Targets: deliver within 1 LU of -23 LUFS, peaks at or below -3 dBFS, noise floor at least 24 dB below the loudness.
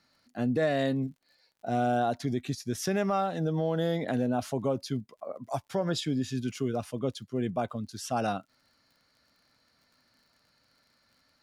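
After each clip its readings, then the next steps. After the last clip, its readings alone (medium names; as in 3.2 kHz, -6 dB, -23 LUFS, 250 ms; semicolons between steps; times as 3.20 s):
tick rate 42 per s; loudness -31.0 LUFS; peak level -17.0 dBFS; loudness target -23.0 LUFS
-> de-click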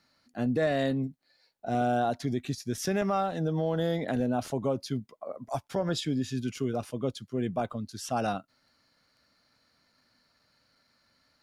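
tick rate 0.26 per s; loudness -31.0 LUFS; peak level -17.0 dBFS; loudness target -23.0 LUFS
-> trim +8 dB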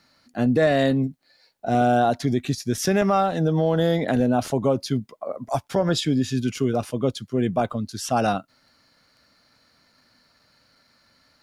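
loudness -23.0 LUFS; peak level -9.0 dBFS; noise floor -63 dBFS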